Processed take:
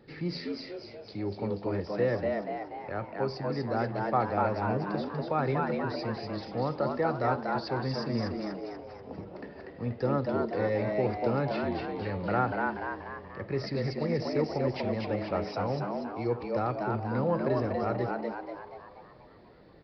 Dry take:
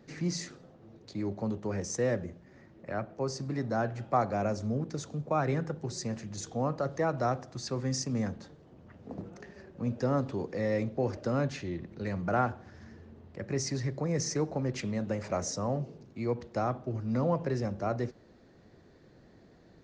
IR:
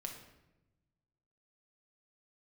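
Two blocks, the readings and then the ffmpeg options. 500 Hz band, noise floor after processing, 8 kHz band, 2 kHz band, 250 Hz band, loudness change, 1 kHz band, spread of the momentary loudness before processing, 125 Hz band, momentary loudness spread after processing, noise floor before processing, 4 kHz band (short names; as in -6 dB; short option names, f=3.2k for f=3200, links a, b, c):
+3.0 dB, -50 dBFS, under -20 dB, +4.0 dB, +1.0 dB, +1.5 dB, +3.5 dB, 14 LU, -0.5 dB, 12 LU, -58 dBFS, 0.0 dB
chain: -filter_complex "[0:a]aecho=1:1:2.3:0.33,asplit=2[a][b];[b]asplit=7[c][d][e][f][g][h][i];[c]adelay=241,afreqshift=98,volume=-3dB[j];[d]adelay=482,afreqshift=196,volume=-8.8dB[k];[e]adelay=723,afreqshift=294,volume=-14.7dB[l];[f]adelay=964,afreqshift=392,volume=-20.5dB[m];[g]adelay=1205,afreqshift=490,volume=-26.4dB[n];[h]adelay=1446,afreqshift=588,volume=-32.2dB[o];[i]adelay=1687,afreqshift=686,volume=-38.1dB[p];[j][k][l][m][n][o][p]amix=inputs=7:normalize=0[q];[a][q]amix=inputs=2:normalize=0,aresample=11025,aresample=44100"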